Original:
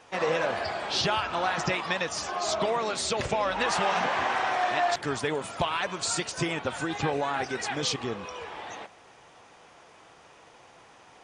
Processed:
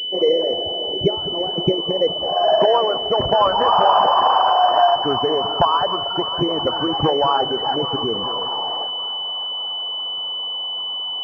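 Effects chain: formant sharpening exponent 2; low-pass sweep 390 Hz -> 1100 Hz, 1.74–3.02; on a send: split-band echo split 610 Hz, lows 0.211 s, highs 0.574 s, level -12.5 dB; on the sum: pulse-width modulation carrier 3000 Hz; gain +7.5 dB

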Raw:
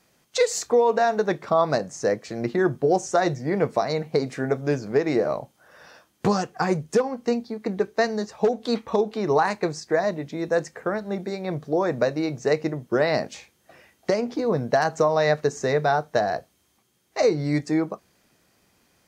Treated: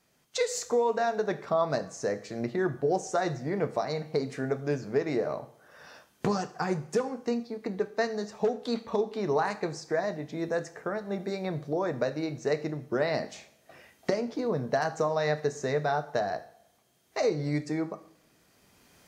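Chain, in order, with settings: recorder AGC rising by 9.2 dB/s; two-slope reverb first 0.55 s, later 1.5 s, DRR 10.5 dB; gain -7 dB

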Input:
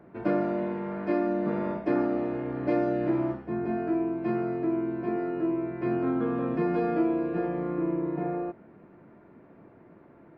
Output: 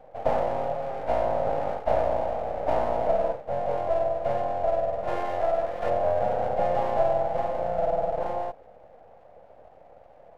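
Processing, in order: spectral gain 5.08–5.89, 710–1700 Hz +10 dB; full-wave rectifier; band shelf 630 Hz +14 dB 1 oct; gain -3.5 dB

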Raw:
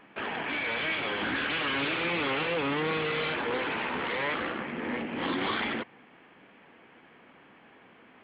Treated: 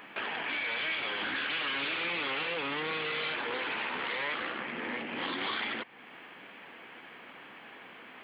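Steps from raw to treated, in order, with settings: tilt +2.5 dB/oct; compressor 2:1, threshold -46 dBFS, peak gain reduction 11.5 dB; gain +6 dB

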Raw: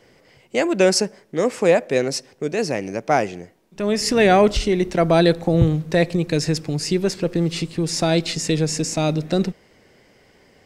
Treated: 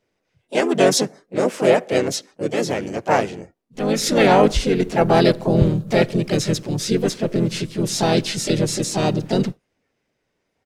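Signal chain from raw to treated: spectral noise reduction 20 dB; harmoniser -5 st -5 dB, +3 st -6 dB, +4 st -6 dB; gain -2 dB

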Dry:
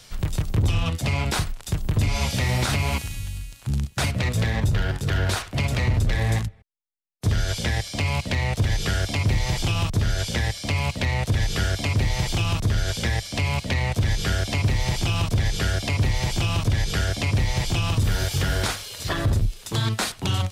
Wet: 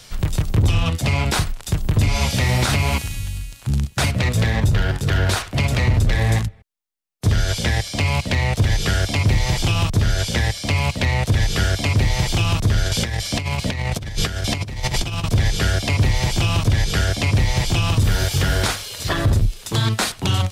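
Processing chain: 12.86–15.24 negative-ratio compressor -26 dBFS, ratio -0.5; gain +4.5 dB

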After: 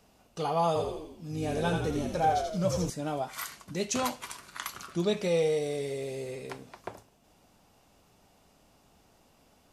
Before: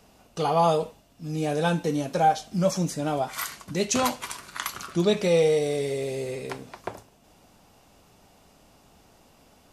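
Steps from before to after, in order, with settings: 0.67–2.9 frequency-shifting echo 84 ms, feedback 53%, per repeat -49 Hz, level -4.5 dB; gain -6 dB

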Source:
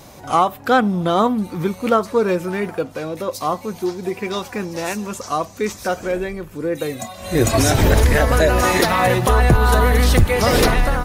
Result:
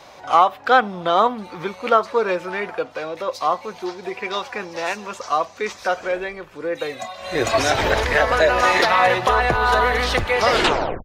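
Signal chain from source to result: tape stop at the end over 0.53 s; three-band isolator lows -16 dB, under 470 Hz, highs -20 dB, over 5300 Hz; gain +2.5 dB

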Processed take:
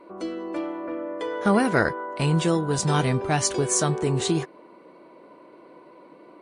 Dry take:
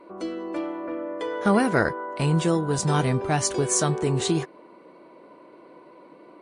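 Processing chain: 1.64–3.57 dynamic EQ 3300 Hz, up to +3 dB, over -37 dBFS, Q 0.74

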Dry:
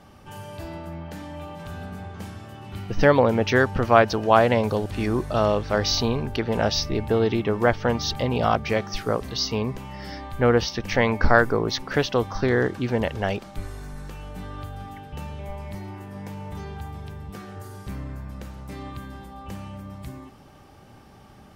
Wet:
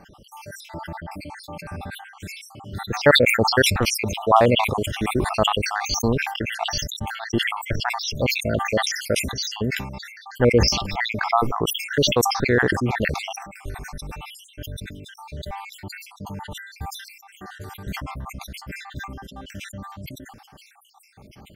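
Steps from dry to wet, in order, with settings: random spectral dropouts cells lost 66%; sustainer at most 55 dB/s; gain +3 dB

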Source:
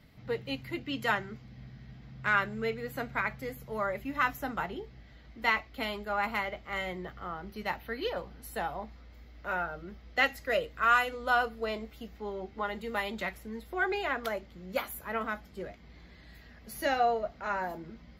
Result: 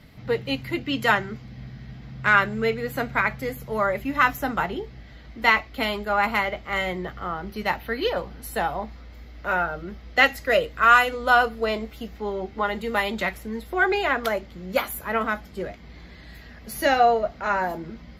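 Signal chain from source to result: downsampling 32000 Hz; gain +9 dB

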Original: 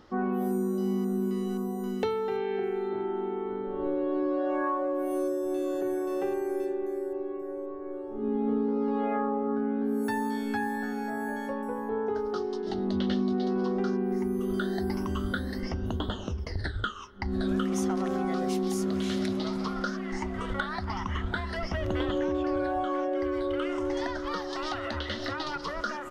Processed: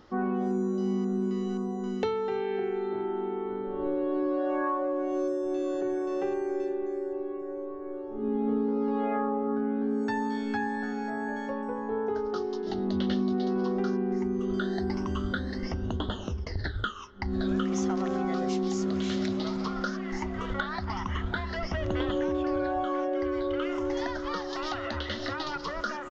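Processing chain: downsampling 16000 Hz

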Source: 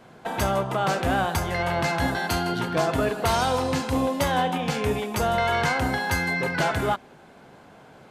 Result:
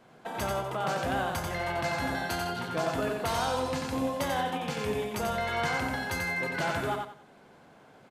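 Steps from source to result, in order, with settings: bell 60 Hz -6 dB 1.5 oct; on a send: feedback echo 90 ms, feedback 27%, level -4 dB; on the sum: gain -7.5 dB

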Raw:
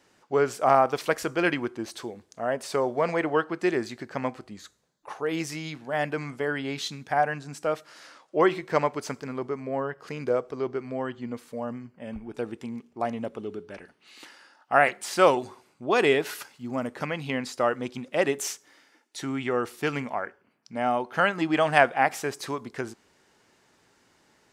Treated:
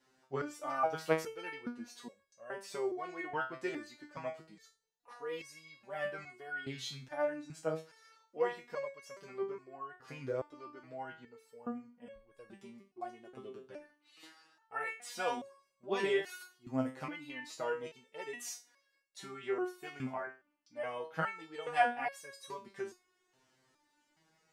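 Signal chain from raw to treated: flange 0.45 Hz, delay 4.8 ms, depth 1.8 ms, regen -59%; stepped resonator 2.4 Hz 130–550 Hz; gain +5.5 dB

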